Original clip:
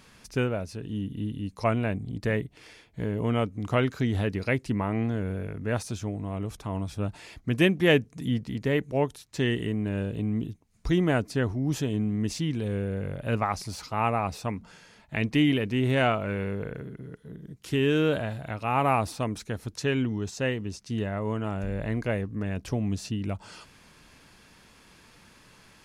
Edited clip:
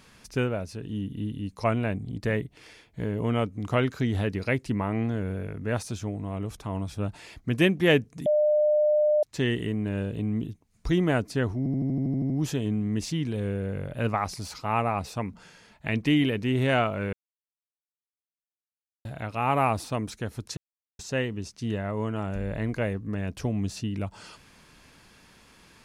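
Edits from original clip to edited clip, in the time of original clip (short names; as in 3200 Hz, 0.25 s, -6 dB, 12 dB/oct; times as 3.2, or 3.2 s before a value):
8.26–9.23 bleep 602 Hz -18.5 dBFS
11.58 stutter 0.08 s, 10 plays
16.41–18.33 mute
19.85–20.27 mute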